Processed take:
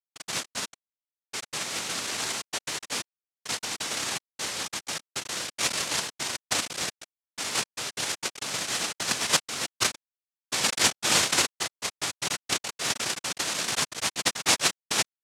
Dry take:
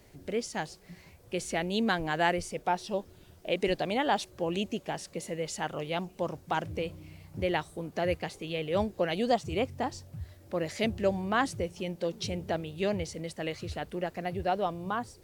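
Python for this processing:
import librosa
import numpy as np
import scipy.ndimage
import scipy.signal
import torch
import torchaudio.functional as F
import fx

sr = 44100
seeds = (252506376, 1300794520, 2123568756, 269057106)

p1 = fx.low_shelf(x, sr, hz=170.0, db=-10.5)
p2 = p1 + 0.43 * np.pad(p1, (int(5.4 * sr / 1000.0), 0))[:len(p1)]
p3 = fx.rider(p2, sr, range_db=4, speed_s=0.5)
p4 = p2 + (p3 * librosa.db_to_amplitude(2.5))
p5 = fx.filter_sweep_bandpass(p4, sr, from_hz=380.0, to_hz=2600.0, start_s=9.89, end_s=13.05, q=3.6)
p6 = fx.schmitt(p5, sr, flips_db=-43.5)
p7 = fx.filter_sweep_highpass(p6, sr, from_hz=1400.0, to_hz=690.0, start_s=5.02, end_s=5.59, q=5.0)
p8 = fx.noise_vocoder(p7, sr, seeds[0], bands=1)
y = p8 * librosa.db_to_amplitude(3.0)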